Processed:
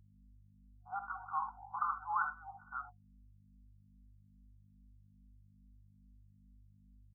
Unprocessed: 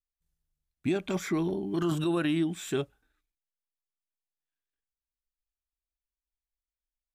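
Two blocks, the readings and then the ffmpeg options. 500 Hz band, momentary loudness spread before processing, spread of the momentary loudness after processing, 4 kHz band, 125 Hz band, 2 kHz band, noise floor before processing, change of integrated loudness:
under -35 dB, 6 LU, 10 LU, under -40 dB, -23.0 dB, -3.5 dB, under -85 dBFS, -9.5 dB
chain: -filter_complex "[0:a]anlmdn=0.631,afftfilt=real='re*between(b*sr/4096,720,1500)':imag='im*between(b*sr/4096,720,1500)':win_size=4096:overlap=0.75,aeval=exprs='val(0)+0.000501*(sin(2*PI*50*n/s)+sin(2*PI*2*50*n/s)/2+sin(2*PI*3*50*n/s)/3+sin(2*PI*4*50*n/s)/4+sin(2*PI*5*50*n/s)/5)':c=same,aecho=1:1:50|64|79:0.224|0.2|0.266,asplit=2[a][b];[b]afreqshift=2.4[c];[a][c]amix=inputs=2:normalize=1,volume=7dB"

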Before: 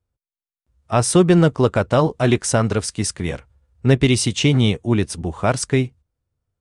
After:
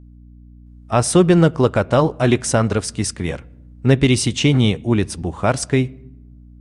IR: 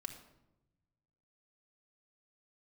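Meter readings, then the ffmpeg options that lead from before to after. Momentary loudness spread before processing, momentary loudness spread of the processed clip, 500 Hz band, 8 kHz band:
9 LU, 10 LU, +1.0 dB, 0.0 dB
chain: -filter_complex "[0:a]aeval=exprs='val(0)+0.00794*(sin(2*PI*60*n/s)+sin(2*PI*2*60*n/s)/2+sin(2*PI*3*60*n/s)/3+sin(2*PI*4*60*n/s)/4+sin(2*PI*5*60*n/s)/5)':c=same,asplit=2[a][b];[1:a]atrim=start_sample=2205,lowpass=4.1k[c];[b][c]afir=irnorm=-1:irlink=0,volume=-13dB[d];[a][d]amix=inputs=2:normalize=0"

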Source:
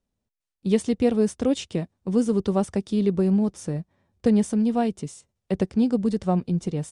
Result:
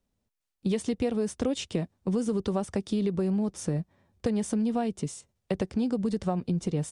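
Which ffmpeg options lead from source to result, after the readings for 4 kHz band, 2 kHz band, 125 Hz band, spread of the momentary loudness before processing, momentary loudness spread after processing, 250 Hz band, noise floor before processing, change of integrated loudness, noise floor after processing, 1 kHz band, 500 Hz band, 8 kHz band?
-1.5 dB, -3.0 dB, -4.0 dB, 10 LU, 7 LU, -6.0 dB, -84 dBFS, -6.0 dB, -82 dBFS, -5.0 dB, -5.5 dB, -1.0 dB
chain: -filter_complex "[0:a]acrossover=split=450[a][b];[a]alimiter=limit=-20dB:level=0:latency=1[c];[c][b]amix=inputs=2:normalize=0,acompressor=threshold=-26dB:ratio=6,volume=2dB"

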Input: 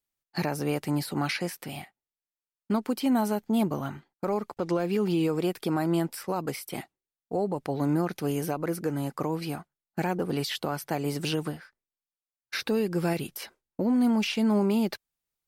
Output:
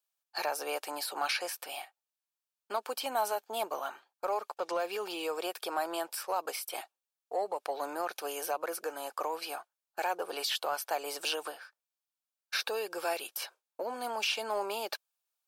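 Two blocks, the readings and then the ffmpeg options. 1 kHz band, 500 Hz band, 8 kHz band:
+0.5 dB, -5.0 dB, +1.0 dB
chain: -filter_complex "[0:a]highpass=f=550:w=0.5412,highpass=f=550:w=1.3066,bandreject=f=2k:w=5.2,asplit=2[a][b];[b]asoftclip=type=tanh:threshold=-29.5dB,volume=-7.5dB[c];[a][c]amix=inputs=2:normalize=0,volume=-1.5dB"

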